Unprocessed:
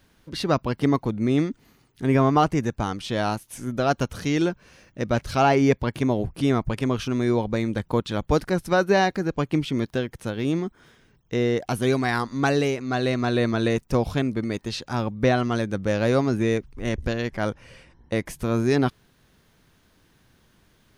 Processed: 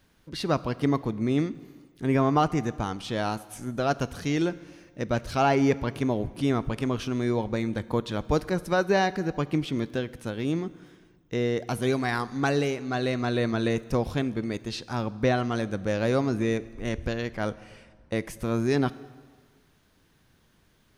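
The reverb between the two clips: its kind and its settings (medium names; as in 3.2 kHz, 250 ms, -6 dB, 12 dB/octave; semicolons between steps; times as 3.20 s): plate-style reverb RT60 1.6 s, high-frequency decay 0.85×, DRR 16.5 dB; trim -3.5 dB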